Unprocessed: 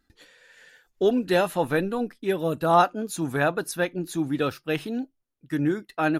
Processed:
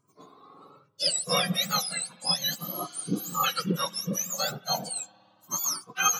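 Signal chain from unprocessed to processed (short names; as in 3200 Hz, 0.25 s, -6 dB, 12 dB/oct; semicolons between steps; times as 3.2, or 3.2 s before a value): spectrum mirrored in octaves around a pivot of 1400 Hz; spring tank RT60 3.3 s, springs 56 ms, chirp 70 ms, DRR 20 dB; spectral repair 2.62–3.42, 1300–6600 Hz before; cascading flanger rising 0.36 Hz; gain +6 dB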